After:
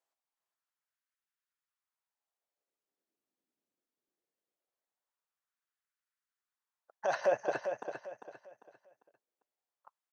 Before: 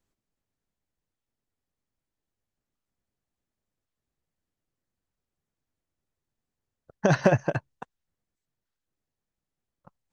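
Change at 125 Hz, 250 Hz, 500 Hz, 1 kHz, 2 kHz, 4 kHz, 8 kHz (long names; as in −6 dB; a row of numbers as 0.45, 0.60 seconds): −32.0 dB, −21.0 dB, −5.5 dB, −5.0 dB, −8.5 dB, −9.0 dB, can't be measured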